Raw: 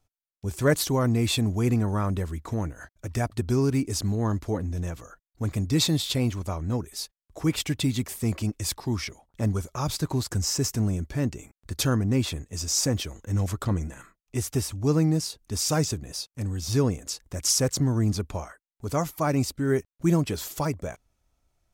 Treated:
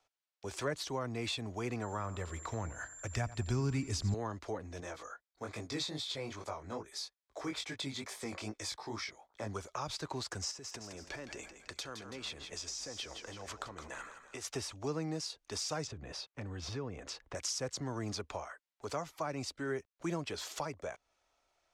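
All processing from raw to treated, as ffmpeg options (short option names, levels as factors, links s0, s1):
-filter_complex "[0:a]asettb=1/sr,asplit=3[s0][s1][s2];[s0]atrim=end=1.824[s3];[s1]atrim=start=1.82:end=4.14,asetpts=PTS-STARTPTS,afade=t=in:d=0.004:c=qsin,afade=t=out:st=2.316:d=0.004:c=qsin,asubboost=boost=10:cutoff=170,aeval=exprs='val(0)+0.00501*sin(2*PI*7300*n/s)':c=same,aecho=1:1:88|176|264|352:0.133|0.06|0.027|0.0122,atrim=end_sample=102312[s4];[s2]atrim=start=4.136[s5];[s3][s4]acrossfade=d=0.004:c1=hsin:c2=qsin[s6];[s6][s5]acrossfade=d=0.004:c1=qsin:c2=hsin,asettb=1/sr,asplit=3[s7][s8][s9];[s7]atrim=end=4.804[s10];[s8]atrim=start=4.8:end=9.54,asetpts=PTS-STARTPTS,afade=t=in:d=0.004:c=qsin,afade=t=out:st=4.736:d=0.004:c=qsin,bandreject=f=2800:w=6.5,flanger=delay=18:depth=4.1:speed=2.4[s11];[s9]atrim=start=9.536[s12];[s10][s11]acrossfade=d=0.004:c1=hsin:c2=qsin[s13];[s13][s12]acrossfade=d=0.004:c1=qsin:c2=hsin,asettb=1/sr,asplit=3[s14][s15][s16];[s14]atrim=end=10.514[s17];[s15]atrim=start=10.51:end=14.45,asetpts=PTS-STARTPTS,afade=t=in:d=0.004:c=qsin,afade=t=out:st=3.936:d=0.004:c=qsin,acompressor=threshold=0.0224:ratio=12:attack=3.2:release=140:knee=1:detection=peak,asplit=6[s18][s19][s20][s21][s22][s23];[s19]adelay=165,afreqshift=-38,volume=0.299[s24];[s20]adelay=330,afreqshift=-76,volume=0.143[s25];[s21]adelay=495,afreqshift=-114,volume=0.0684[s26];[s22]adelay=660,afreqshift=-152,volume=0.0331[s27];[s23]adelay=825,afreqshift=-190,volume=0.0158[s28];[s18][s24][s25][s26][s27][s28]amix=inputs=6:normalize=0,atrim=end_sample=173754[s29];[s16]atrim=start=14.446[s30];[s17][s29]acrossfade=d=0.004:c1=hsin:c2=qsin[s31];[s31][s30]acrossfade=d=0.004:c1=qsin:c2=hsin,asettb=1/sr,asplit=3[s32][s33][s34];[s32]atrim=end=15.874[s35];[s33]atrim=start=15.87:end=17.35,asetpts=PTS-STARTPTS,afade=t=in:d=0.004:c=qsin,afade=t=out:st=1.476:d=0.004:c=qsin,bass=f=250:g=10,treble=f=4000:g=-14,acompressor=threshold=0.0631:ratio=4:attack=3.2:release=140:knee=1:detection=peak[s36];[s34]atrim=start=17.346[s37];[s35][s36]acrossfade=d=0.004:c1=hsin:c2=qsin[s38];[s38][s37]acrossfade=d=0.004:c1=qsin:c2=hsin,lowpass=10000,acrossover=split=420 6400:gain=0.0708 1 0.251[s39][s40][s41];[s39][s40][s41]amix=inputs=3:normalize=0,acrossover=split=200[s42][s43];[s43]acompressor=threshold=0.00562:ratio=3[s44];[s42][s44]amix=inputs=2:normalize=0,volume=1.68"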